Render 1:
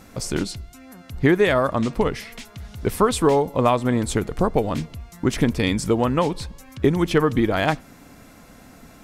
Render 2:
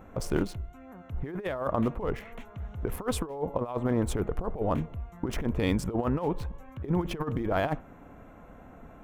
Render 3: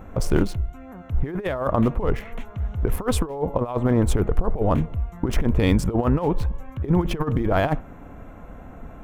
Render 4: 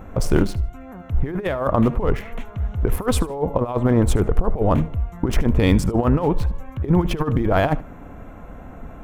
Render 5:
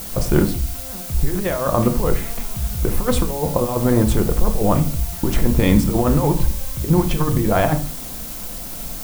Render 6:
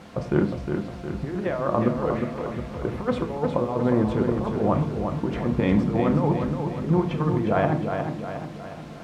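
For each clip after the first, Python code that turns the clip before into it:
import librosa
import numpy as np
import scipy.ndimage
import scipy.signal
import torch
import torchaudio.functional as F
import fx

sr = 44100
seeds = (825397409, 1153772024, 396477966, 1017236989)

y1 = fx.wiener(x, sr, points=9)
y1 = fx.graphic_eq(y1, sr, hz=(125, 250, 2000, 4000, 8000), db=(-4, -5, -6, -8, -9))
y1 = fx.over_compress(y1, sr, threshold_db=-25.0, ratio=-0.5)
y1 = y1 * librosa.db_to_amplitude(-2.5)
y2 = fx.low_shelf(y1, sr, hz=100.0, db=8.0)
y2 = y2 * librosa.db_to_amplitude(6.0)
y3 = fx.echo_feedback(y2, sr, ms=75, feedback_pct=22, wet_db=-20.0)
y3 = y3 * librosa.db_to_amplitude(2.5)
y4 = fx.dmg_noise_colour(y3, sr, seeds[0], colour='blue', level_db=-33.0)
y4 = fx.room_shoebox(y4, sr, seeds[1], volume_m3=280.0, walls='furnished', distance_m=0.84)
y5 = fx.bandpass_edges(y4, sr, low_hz=120.0, high_hz=2300.0)
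y5 = fx.echo_feedback(y5, sr, ms=359, feedback_pct=52, wet_db=-6)
y5 = y5 * librosa.db_to_amplitude(-4.5)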